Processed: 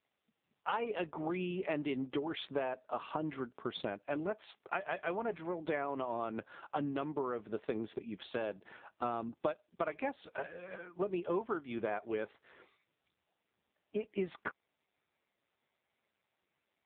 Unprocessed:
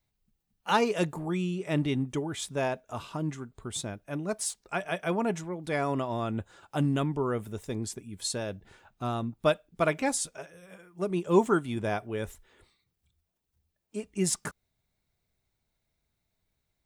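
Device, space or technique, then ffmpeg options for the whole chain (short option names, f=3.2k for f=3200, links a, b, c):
voicemail: -af "highpass=330,lowpass=3.2k,acompressor=threshold=-39dB:ratio=10,volume=7.5dB" -ar 8000 -c:a libopencore_amrnb -b:a 5900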